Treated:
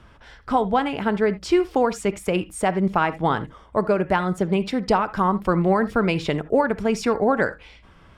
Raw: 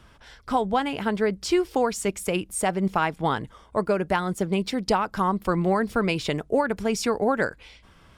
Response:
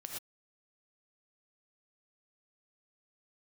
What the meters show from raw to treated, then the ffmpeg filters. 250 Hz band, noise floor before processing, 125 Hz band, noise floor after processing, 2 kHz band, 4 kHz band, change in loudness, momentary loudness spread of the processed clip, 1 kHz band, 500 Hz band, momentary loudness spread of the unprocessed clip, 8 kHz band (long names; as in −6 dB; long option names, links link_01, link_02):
+3.5 dB, −54 dBFS, +3.5 dB, −51 dBFS, +2.5 dB, −1.0 dB, +3.0 dB, 5 LU, +3.0 dB, +3.5 dB, 4 LU, −5.0 dB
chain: -filter_complex "[0:a]highshelf=frequency=8400:gain=-9.5,asplit=2[link_01][link_02];[1:a]atrim=start_sample=2205,afade=type=out:start_time=0.13:duration=0.01,atrim=end_sample=6174,lowpass=3300[link_03];[link_02][link_03]afir=irnorm=-1:irlink=0,volume=-1.5dB[link_04];[link_01][link_04]amix=inputs=2:normalize=0"